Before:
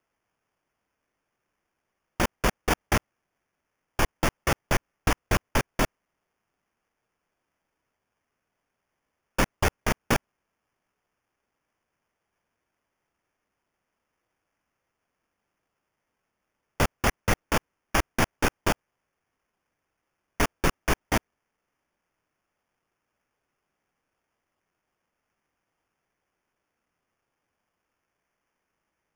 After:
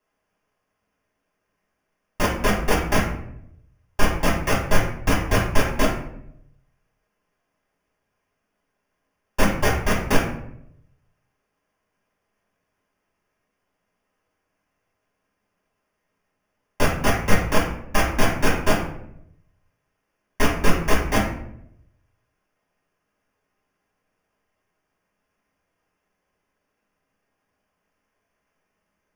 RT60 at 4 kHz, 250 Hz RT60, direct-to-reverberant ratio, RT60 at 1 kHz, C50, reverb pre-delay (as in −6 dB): 0.40 s, 1.0 s, −6.5 dB, 0.65 s, 5.0 dB, 3 ms